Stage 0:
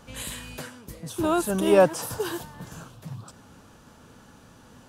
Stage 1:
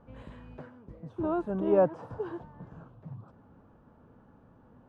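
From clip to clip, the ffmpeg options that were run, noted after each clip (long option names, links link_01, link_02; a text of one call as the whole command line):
ffmpeg -i in.wav -af "lowpass=1000,volume=-5.5dB" out.wav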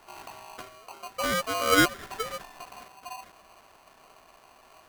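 ffmpeg -i in.wav -af "aeval=exprs='val(0)*sgn(sin(2*PI*880*n/s))':channel_layout=same,volume=2dB" out.wav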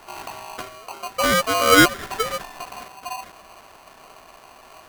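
ffmpeg -i in.wav -af "asoftclip=type=tanh:threshold=-12.5dB,volume=9dB" out.wav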